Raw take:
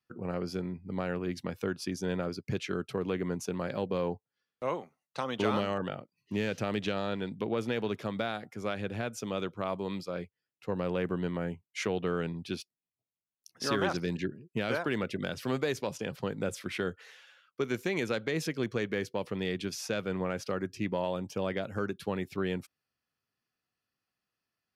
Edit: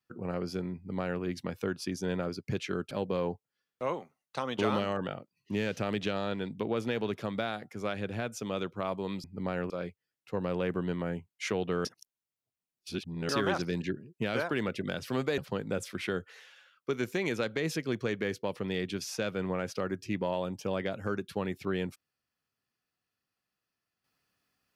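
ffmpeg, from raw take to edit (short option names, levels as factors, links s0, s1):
-filter_complex "[0:a]asplit=7[s0][s1][s2][s3][s4][s5][s6];[s0]atrim=end=2.912[s7];[s1]atrim=start=3.718:end=10.052[s8];[s2]atrim=start=0.758:end=1.222[s9];[s3]atrim=start=10.048:end=12.202[s10];[s4]atrim=start=12.198:end=13.642,asetpts=PTS-STARTPTS,areverse[s11];[s5]atrim=start=13.638:end=15.732[s12];[s6]atrim=start=16.088[s13];[s7][s8]acrossfade=d=0.004:c1=hsin:c2=hsin[s14];[s14][s9]acrossfade=d=0.004:c1=hsin:c2=hsin[s15];[s15][s10]acrossfade=d=0.004:c1=hsin:c2=hsin[s16];[s16][s11]acrossfade=d=0.004:c1=hsin:c2=hsin[s17];[s17][s12]acrossfade=d=0.004:c1=hsin:c2=hsin[s18];[s18][s13]acrossfade=d=0.004:c1=hsin:c2=hsin"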